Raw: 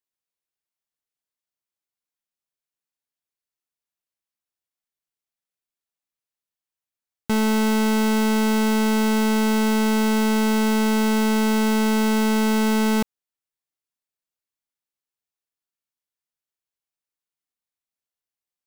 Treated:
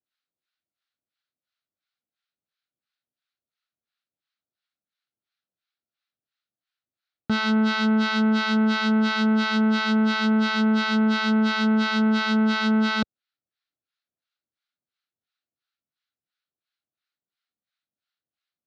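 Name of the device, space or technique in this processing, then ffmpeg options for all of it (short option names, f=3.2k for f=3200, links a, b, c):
guitar amplifier with harmonic tremolo: -filter_complex "[0:a]acrossover=split=780[a][b];[a]aeval=exprs='val(0)*(1-1/2+1/2*cos(2*PI*2.9*n/s))':c=same[c];[b]aeval=exprs='val(0)*(1-1/2-1/2*cos(2*PI*2.9*n/s))':c=same[d];[c][d]amix=inputs=2:normalize=0,asoftclip=type=tanh:threshold=-25.5dB,highpass=84,equalizer=f=440:t=q:w=4:g=-7,equalizer=f=960:t=q:w=4:g=-10,equalizer=f=1.4k:t=q:w=4:g=7,equalizer=f=4k:t=q:w=4:g=6,lowpass=f=4.5k:w=0.5412,lowpass=f=4.5k:w=1.3066,volume=8.5dB"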